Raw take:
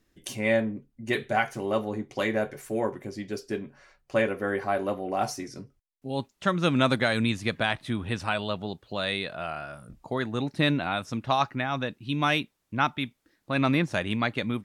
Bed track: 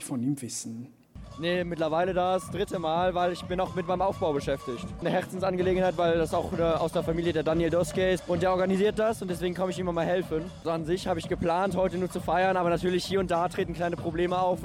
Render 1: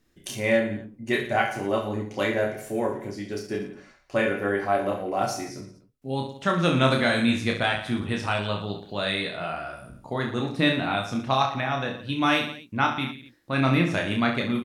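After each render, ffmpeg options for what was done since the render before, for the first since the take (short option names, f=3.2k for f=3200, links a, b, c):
-filter_complex "[0:a]asplit=2[a][b];[b]adelay=17,volume=-11dB[c];[a][c]amix=inputs=2:normalize=0,aecho=1:1:30|67.5|114.4|173|246.2:0.631|0.398|0.251|0.158|0.1"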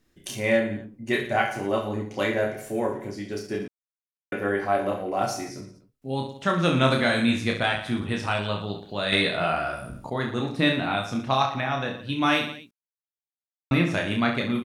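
-filter_complex "[0:a]asettb=1/sr,asplit=3[a][b][c];[a]atrim=end=9.124[d];[b]atrim=start=9.12:end=10.1,asetpts=PTS-STARTPTS,afade=t=in:d=0.004:c=qsin,afade=t=out:st=0.976:d=0.004:c=qsin,acontrast=67[e];[c]atrim=start=10.096[f];[d][e]acrossfade=d=0.004:c1=hsin:c2=qsin[g];[g][f]acrossfade=d=0.004:c1=qsin:c2=hsin,asplit=5[h][i][j][k][l];[h]atrim=end=3.68,asetpts=PTS-STARTPTS,afade=t=out:st=3.676:d=0.004:c=hsin[m];[i]atrim=start=3.68:end=4.32,asetpts=PTS-STARTPTS,volume=0[n];[j]atrim=start=4.32:end=12.71,asetpts=PTS-STARTPTS,afade=t=in:d=0.004:c=hsin,afade=t=out:st=8.386:d=0.004:c=hsin[o];[k]atrim=start=12.71:end=13.71,asetpts=PTS-STARTPTS,volume=0[p];[l]atrim=start=13.71,asetpts=PTS-STARTPTS,afade=t=in:d=0.004:c=hsin[q];[m][n][o][p][q]concat=n=5:v=0:a=1"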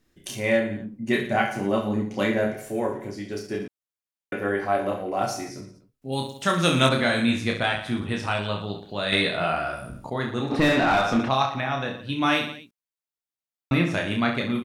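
-filter_complex "[0:a]asettb=1/sr,asplit=3[a][b][c];[a]atrim=end=0.804[d];[b]atrim=start=0.8:end=2.54,asetpts=PTS-STARTPTS,afade=t=in:d=0.004:c=qsin,afade=t=out:st=1.736:d=0.004:c=qsin,equalizer=f=200:w=2:g=8.5[e];[c]atrim=start=2.536[f];[d][e]acrossfade=d=0.004:c1=hsin:c2=qsin[g];[g][f]acrossfade=d=0.004:c1=qsin:c2=hsin,asettb=1/sr,asplit=3[h][i][j];[h]atrim=end=6.124[k];[i]atrim=start=6.12:end=6.89,asetpts=PTS-STARTPTS,afade=t=in:d=0.004:c=qsin,afade=t=out:st=0.766:d=0.004:c=qsin,aemphasis=mode=production:type=75kf[l];[j]atrim=start=6.886[m];[k][l]acrossfade=d=0.004:c1=hsin:c2=qsin[n];[n][m]acrossfade=d=0.004:c1=qsin:c2=hsin,asplit=3[o][p][q];[o]afade=t=out:st=10.5:d=0.02[r];[p]asplit=2[s][t];[t]highpass=f=720:p=1,volume=25dB,asoftclip=type=tanh:threshold=-9.5dB[u];[s][u]amix=inputs=2:normalize=0,lowpass=f=1.1k:p=1,volume=-6dB,afade=t=in:st=10.5:d=0.02,afade=t=out:st=11.28:d=0.02[v];[q]afade=t=in:st=11.28:d=0.02[w];[r][v][w]amix=inputs=3:normalize=0"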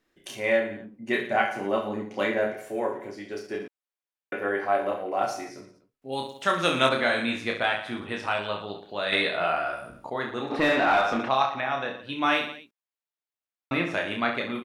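-af "bass=f=250:g=-14,treble=f=4k:g=-8"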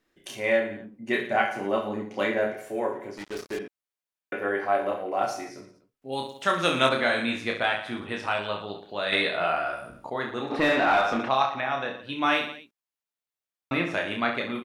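-filter_complex "[0:a]asettb=1/sr,asplit=3[a][b][c];[a]atrim=end=3.174[d];[b]atrim=start=3.17:end=3.59,asetpts=PTS-STARTPTS,afade=t=in:d=0.004:c=qsin,afade=t=out:st=0.416:d=0.004:c=qsin,acrusher=bits=5:mix=0:aa=0.5[e];[c]atrim=start=3.586[f];[d][e]acrossfade=d=0.004:c1=hsin:c2=qsin[g];[g][f]acrossfade=d=0.004:c1=qsin:c2=hsin"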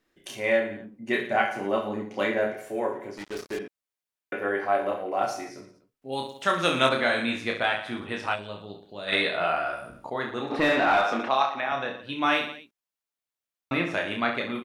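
-filter_complex "[0:a]asplit=3[a][b][c];[a]afade=t=out:st=8.34:d=0.02[d];[b]equalizer=f=1.5k:w=0.36:g=-12,afade=t=in:st=8.34:d=0.02,afade=t=out:st=9.07:d=0.02[e];[c]afade=t=in:st=9.07:d=0.02[f];[d][e][f]amix=inputs=3:normalize=0,asettb=1/sr,asplit=3[g][h][i];[g]atrim=end=11.044[j];[h]atrim=start=11.04:end=11.72,asetpts=PTS-STARTPTS,afade=t=in:d=0.004:c=qsin,afade=t=out:st=0.676:d=0.004:c=qsin,highpass=220[k];[i]atrim=start=11.716[l];[j][k]acrossfade=d=0.004:c1=hsin:c2=qsin[m];[m][l]acrossfade=d=0.004:c1=qsin:c2=hsin"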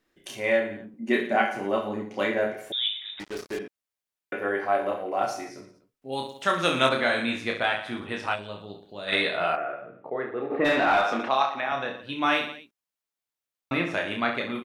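-filter_complex "[0:a]asettb=1/sr,asplit=3[a][b][c];[a]atrim=end=0.944[d];[b]atrim=start=0.94:end=1.55,asetpts=PTS-STARTPTS,afade=t=in:d=0.004:c=qsin,afade=t=out:st=0.606:d=0.004:c=qsin,highpass=f=230:t=q:w=2[e];[c]atrim=start=1.546[f];[d][e]acrossfade=d=0.004:c1=hsin:c2=qsin[g];[g][f]acrossfade=d=0.004:c1=qsin:c2=hsin,asettb=1/sr,asplit=3[h][i][j];[h]atrim=end=2.724[k];[i]atrim=start=2.72:end=3.2,asetpts=PTS-STARTPTS,afade=t=in:d=0.004:c=qsin,afade=t=out:st=0.476:d=0.004:c=qsin,lowpass=f=3.4k:t=q:w=0.5098,lowpass=f=3.4k:t=q:w=0.6013,lowpass=f=3.4k:t=q:w=0.9,lowpass=f=3.4k:t=q:w=2.563,afreqshift=-4000[l];[j]atrim=start=3.196[m];[k][l]acrossfade=d=0.004:c1=hsin:c2=qsin[n];[n][m]acrossfade=d=0.004:c1=qsin:c2=hsin,asplit=3[o][p][q];[o]afade=t=out:st=9.55:d=0.02[r];[p]highpass=f=130:w=0.5412,highpass=f=130:w=1.3066,equalizer=f=140:t=q:w=4:g=-3,equalizer=f=230:t=q:w=4:g=-7,equalizer=f=440:t=q:w=4:g=7,equalizer=f=960:t=q:w=4:g=-9,equalizer=f=1.5k:t=q:w=4:g=-5,lowpass=f=2.1k:w=0.5412,lowpass=f=2.1k:w=1.3066,afade=t=in:st=9.55:d=0.02,afade=t=out:st=10.64:d=0.02[s];[q]afade=t=in:st=10.64:d=0.02[t];[r][s][t]amix=inputs=3:normalize=0"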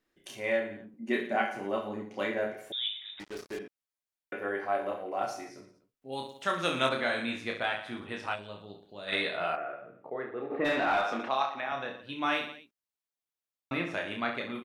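-af "volume=-6dB"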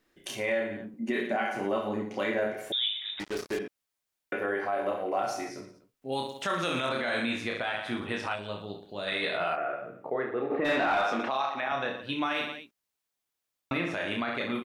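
-filter_complex "[0:a]asplit=2[a][b];[b]acompressor=threshold=-36dB:ratio=6,volume=3dB[c];[a][c]amix=inputs=2:normalize=0,alimiter=limit=-19.5dB:level=0:latency=1:release=34"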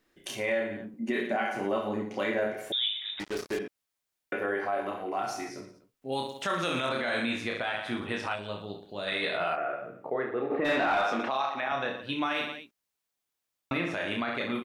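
-filter_complex "[0:a]asettb=1/sr,asplit=3[a][b][c];[a]atrim=end=4.804[d];[b]atrim=start=4.8:end=5.54,asetpts=PTS-STARTPTS,afade=t=in:d=0.004:c=qsin,afade=t=out:st=0.736:d=0.004:c=qsin,equalizer=f=550:t=o:w=0.32:g=-12.5[e];[c]atrim=start=5.536[f];[d][e]acrossfade=d=0.004:c1=hsin:c2=qsin[g];[g][f]acrossfade=d=0.004:c1=qsin:c2=hsin"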